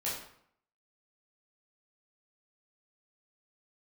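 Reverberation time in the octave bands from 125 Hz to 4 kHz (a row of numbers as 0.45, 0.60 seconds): 0.70, 0.70, 0.65, 0.65, 0.60, 0.50 seconds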